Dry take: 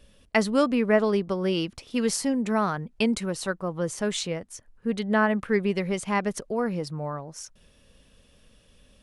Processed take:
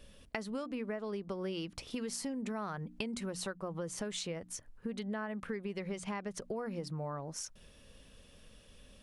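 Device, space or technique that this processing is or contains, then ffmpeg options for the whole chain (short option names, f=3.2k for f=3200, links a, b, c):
serial compression, peaks first: -filter_complex "[0:a]bandreject=f=60:t=h:w=6,bandreject=f=120:t=h:w=6,bandreject=f=180:t=h:w=6,bandreject=f=240:t=h:w=6,bandreject=f=300:t=h:w=6,acompressor=threshold=-31dB:ratio=5,acompressor=threshold=-39dB:ratio=2,asettb=1/sr,asplit=3[a][b][c];[a]atrim=end=5.784[d];[b]atrim=start=5.78:end=6.41,asetpts=PTS-STARTPTS,afade=t=in:d=0.004:c=qsin,afade=t=out:st=0.626:d=0.004:c=qsin,lowpass=8.9k[e];[c]atrim=start=6.406[f];[d][e]acrossfade=d=0.004:c1=hsin:c2=qsin[g];[g][f]acrossfade=d=0.004:c1=qsin:c2=hsin"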